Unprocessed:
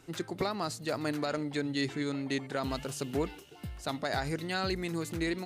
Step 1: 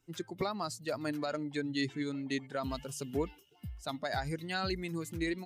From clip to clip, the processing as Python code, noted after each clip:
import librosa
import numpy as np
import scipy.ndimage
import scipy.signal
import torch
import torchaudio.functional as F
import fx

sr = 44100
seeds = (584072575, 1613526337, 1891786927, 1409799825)

y = fx.bin_expand(x, sr, power=1.5)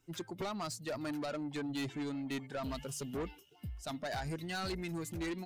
y = 10.0 ** (-35.5 / 20.0) * np.tanh(x / 10.0 ** (-35.5 / 20.0))
y = y * librosa.db_to_amplitude(1.5)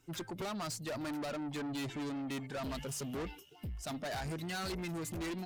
y = fx.tube_stage(x, sr, drive_db=42.0, bias=0.25)
y = y * librosa.db_to_amplitude(5.5)